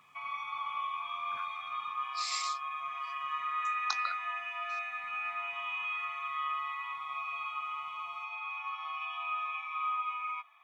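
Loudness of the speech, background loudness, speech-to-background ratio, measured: -38.5 LUFS, -36.0 LUFS, -2.5 dB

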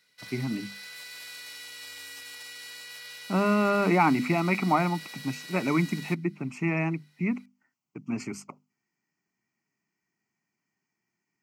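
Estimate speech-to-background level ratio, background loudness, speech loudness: 13.5 dB, -41.0 LUFS, -27.5 LUFS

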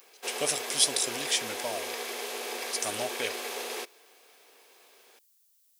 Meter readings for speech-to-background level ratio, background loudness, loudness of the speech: 5.0 dB, -35.0 LUFS, -30.0 LUFS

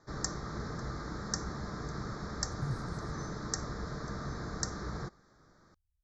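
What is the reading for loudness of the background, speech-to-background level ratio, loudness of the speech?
-39.0 LUFS, -4.0 dB, -43.0 LUFS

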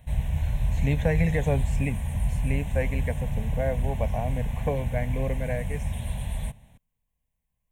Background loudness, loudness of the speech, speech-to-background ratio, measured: -30.0 LUFS, -30.5 LUFS, -0.5 dB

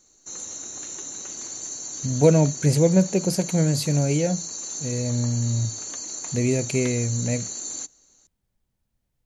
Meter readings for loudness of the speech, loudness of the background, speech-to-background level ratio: -23.0 LUFS, -31.0 LUFS, 8.0 dB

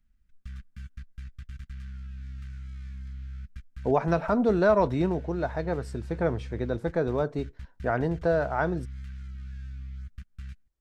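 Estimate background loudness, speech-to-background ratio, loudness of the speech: -42.5 LUFS, 15.0 dB, -27.5 LUFS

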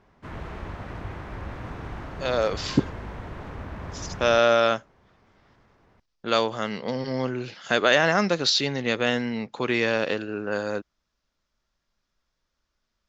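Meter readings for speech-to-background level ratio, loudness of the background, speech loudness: 13.5 dB, -37.5 LUFS, -24.0 LUFS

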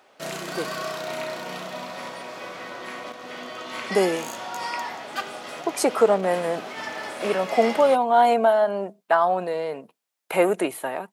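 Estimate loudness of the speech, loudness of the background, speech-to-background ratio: -22.5 LUFS, -33.0 LUFS, 10.5 dB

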